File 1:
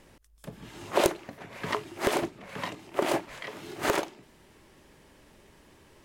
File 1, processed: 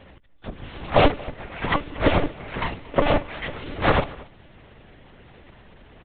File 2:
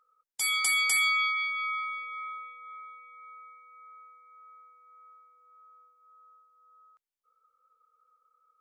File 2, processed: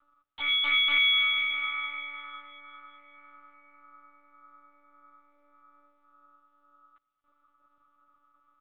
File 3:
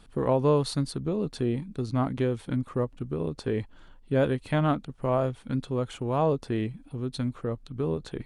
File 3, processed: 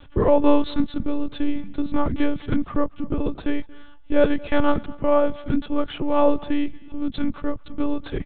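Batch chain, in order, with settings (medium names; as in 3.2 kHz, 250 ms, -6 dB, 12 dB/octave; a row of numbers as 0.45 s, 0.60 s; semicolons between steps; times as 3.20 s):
monotone LPC vocoder at 8 kHz 290 Hz; delay 230 ms -22 dB; normalise loudness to -24 LUFS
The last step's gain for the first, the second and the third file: +8.5 dB, +3.0 dB, +8.5 dB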